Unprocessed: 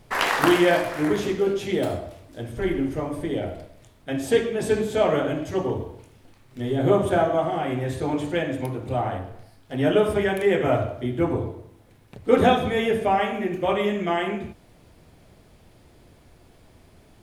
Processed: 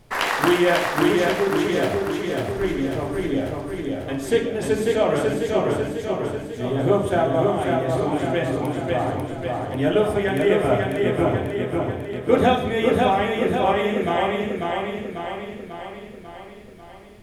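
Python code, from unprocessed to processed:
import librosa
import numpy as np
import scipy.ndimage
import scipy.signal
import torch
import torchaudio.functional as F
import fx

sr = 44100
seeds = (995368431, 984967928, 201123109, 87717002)

y = fx.echo_feedback(x, sr, ms=544, feedback_pct=58, wet_db=-3.0)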